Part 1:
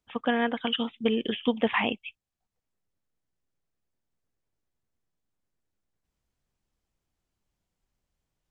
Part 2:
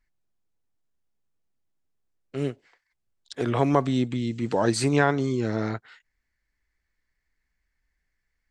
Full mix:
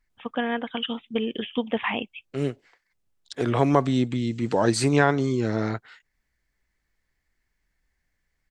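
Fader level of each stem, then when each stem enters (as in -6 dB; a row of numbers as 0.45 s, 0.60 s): -1.0 dB, +1.5 dB; 0.10 s, 0.00 s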